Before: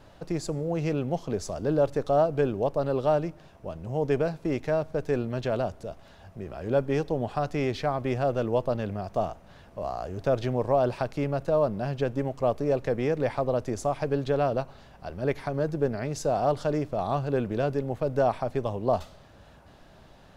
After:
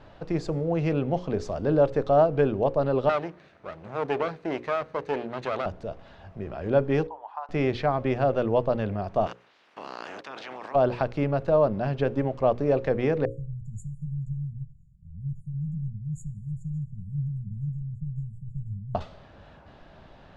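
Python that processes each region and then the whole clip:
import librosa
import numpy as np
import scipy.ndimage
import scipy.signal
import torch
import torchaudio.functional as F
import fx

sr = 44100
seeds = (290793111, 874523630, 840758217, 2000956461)

y = fx.chain(x, sr, fx.lower_of_two(delay_ms=0.48),
    fx.highpass(hz=340.0, slope=6), at=(3.09, 5.66))
y = fx.chain(y, sr, fx.ladder_highpass(hz=880.0, resonance_pct=80),
    fx.high_shelf(hz=2200.0, db=-9.5), at=(7.07, 7.49))
y = fx.spec_clip(y, sr, under_db=28, at=(9.26, 10.74), fade=0.02)
y = fx.highpass(y, sr, hz=260.0, slope=12, at=(9.26, 10.74), fade=0.02)
y = fx.level_steps(y, sr, step_db=21, at=(9.26, 10.74), fade=0.02)
y = fx.chain(y, sr, fx.brickwall_bandstop(low_hz=200.0, high_hz=6700.0),
    fx.band_widen(depth_pct=40), at=(13.25, 18.95))
y = scipy.signal.sosfilt(scipy.signal.butter(2, 3500.0, 'lowpass', fs=sr, output='sos'), y)
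y = fx.hum_notches(y, sr, base_hz=60, count=9)
y = y * librosa.db_to_amplitude(3.0)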